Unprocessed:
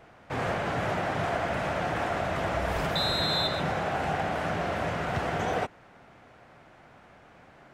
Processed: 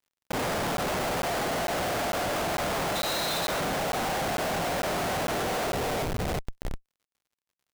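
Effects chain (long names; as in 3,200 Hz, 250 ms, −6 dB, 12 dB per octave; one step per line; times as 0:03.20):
band-pass filter 160–7,400 Hz
mains-hum notches 50/100/150/200/250/300/350/400 Hz
double-tracking delay 46 ms −5 dB
delay with a band-pass on its return 365 ms, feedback 53%, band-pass 730 Hz, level −3.5 dB
comparator with hysteresis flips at −34 dBFS
surface crackle 68 per second −59 dBFS
regular buffer underruns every 0.45 s, samples 512, zero, from 0:00.32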